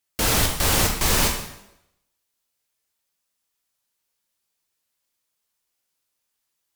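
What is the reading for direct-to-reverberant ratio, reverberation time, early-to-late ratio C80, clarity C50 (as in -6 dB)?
1.0 dB, 0.85 s, 8.5 dB, 5.5 dB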